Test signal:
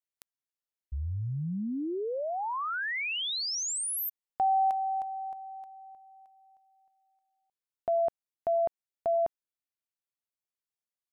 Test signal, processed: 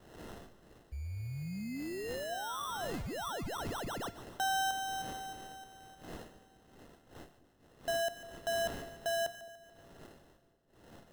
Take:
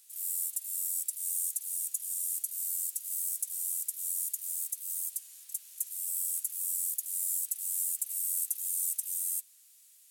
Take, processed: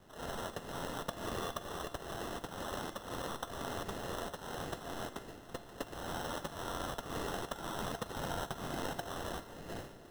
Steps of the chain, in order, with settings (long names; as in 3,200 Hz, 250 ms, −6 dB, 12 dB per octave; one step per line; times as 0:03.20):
wind on the microphone 570 Hz −46 dBFS
decimation without filtering 19×
tuned comb filter 690 Hz, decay 0.49 s, mix 70%
on a send: echo with a time of its own for lows and highs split 590 Hz, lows 214 ms, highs 145 ms, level −14.5 dB
on the sum: level +3 dB